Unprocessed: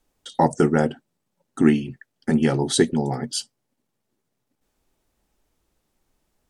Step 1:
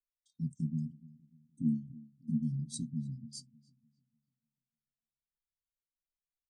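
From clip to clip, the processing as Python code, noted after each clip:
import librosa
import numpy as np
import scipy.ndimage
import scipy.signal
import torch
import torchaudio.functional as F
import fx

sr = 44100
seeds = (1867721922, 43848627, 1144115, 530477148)

y = scipy.signal.sosfilt(scipy.signal.cheby2(4, 50, [460.0, 2100.0], 'bandstop', fs=sr, output='sos'), x)
y = fx.echo_filtered(y, sr, ms=297, feedback_pct=51, hz=3700.0, wet_db=-13.5)
y = fx.spectral_expand(y, sr, expansion=1.5)
y = y * 10.0 ** (-8.5 / 20.0)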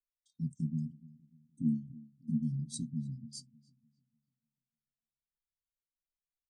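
y = x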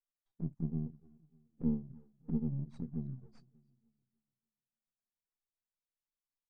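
y = np.where(x < 0.0, 10.0 ** (-7.0 / 20.0) * x, x)
y = scipy.signal.sosfilt(scipy.signal.butter(2, 1500.0, 'lowpass', fs=sr, output='sos'), y)
y = fx.env_flanger(y, sr, rest_ms=10.2, full_db=-34.0)
y = y * 10.0 ** (1.0 / 20.0)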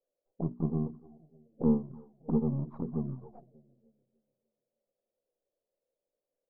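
y = fx.peak_eq(x, sr, hz=480.0, db=12.0, octaves=2.0)
y = fx.hum_notches(y, sr, base_hz=60, count=7)
y = fx.envelope_lowpass(y, sr, base_hz=540.0, top_hz=1100.0, q=5.8, full_db=-36.0, direction='up')
y = y * 10.0 ** (1.5 / 20.0)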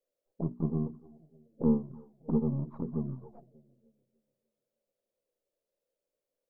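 y = fx.notch(x, sr, hz=750.0, q=12.0)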